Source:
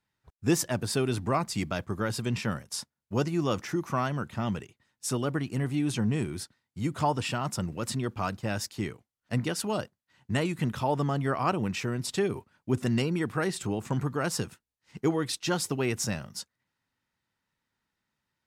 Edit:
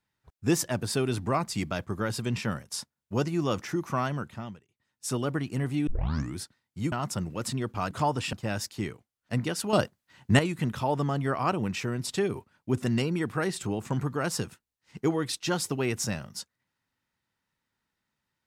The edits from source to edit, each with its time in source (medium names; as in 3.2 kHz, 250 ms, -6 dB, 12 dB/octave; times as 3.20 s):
4.13–5.15 s: dip -23.5 dB, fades 0.48 s
5.87 s: tape start 0.49 s
6.92–7.34 s: move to 8.33 s
9.73–10.39 s: gain +8 dB